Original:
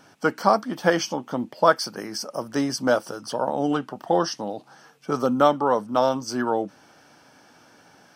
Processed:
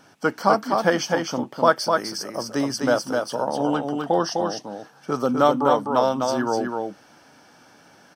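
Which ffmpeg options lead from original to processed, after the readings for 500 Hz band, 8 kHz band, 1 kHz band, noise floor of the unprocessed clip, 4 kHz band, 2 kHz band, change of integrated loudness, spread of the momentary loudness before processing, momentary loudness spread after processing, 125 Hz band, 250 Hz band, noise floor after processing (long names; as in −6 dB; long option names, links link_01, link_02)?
+1.5 dB, +1.5 dB, +1.5 dB, −55 dBFS, +1.5 dB, +1.5 dB, +1.0 dB, 12 LU, 10 LU, +1.5 dB, +1.5 dB, −53 dBFS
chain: -af "aecho=1:1:253:0.631"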